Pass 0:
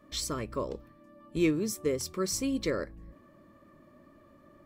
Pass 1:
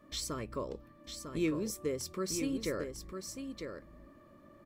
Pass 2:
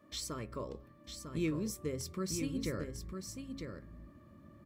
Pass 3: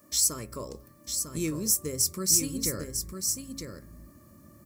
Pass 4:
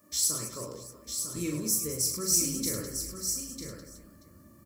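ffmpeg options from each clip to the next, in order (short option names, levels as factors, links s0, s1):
-filter_complex "[0:a]asplit=2[s0][s1];[s1]acompressor=threshold=0.0126:ratio=6,volume=1[s2];[s0][s2]amix=inputs=2:normalize=0,aecho=1:1:950:0.447,volume=0.422"
-af "asubboost=boost=4.5:cutoff=220,highpass=64,bandreject=f=136.6:t=h:w=4,bandreject=f=273.2:t=h:w=4,bandreject=f=409.8:t=h:w=4,bandreject=f=546.4:t=h:w=4,bandreject=f=683:t=h:w=4,bandreject=f=819.6:t=h:w=4,bandreject=f=956.2:t=h:w=4,bandreject=f=1092.8:t=h:w=4,bandreject=f=1229.4:t=h:w=4,bandreject=f=1366:t=h:w=4,bandreject=f=1502.6:t=h:w=4,bandreject=f=1639.2:t=h:w=4,bandreject=f=1775.8:t=h:w=4,bandreject=f=1912.4:t=h:w=4,bandreject=f=2049:t=h:w=4,bandreject=f=2185.6:t=h:w=4,volume=0.75"
-filter_complex "[0:a]aexciter=amount=3.3:drive=9.8:freq=4900,asplit=2[s0][s1];[s1]volume=8.41,asoftclip=hard,volume=0.119,volume=0.422[s2];[s0][s2]amix=inputs=2:normalize=0"
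-af "flanger=delay=9.7:depth=7.2:regen=-53:speed=0.73:shape=sinusoidal,aecho=1:1:40|104|206.4|370.2|632.4:0.631|0.398|0.251|0.158|0.1"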